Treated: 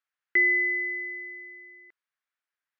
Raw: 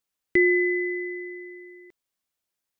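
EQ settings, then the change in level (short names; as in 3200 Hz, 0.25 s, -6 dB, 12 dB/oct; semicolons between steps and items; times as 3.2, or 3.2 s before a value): band-pass 1600 Hz, Q 2.1; +4.5 dB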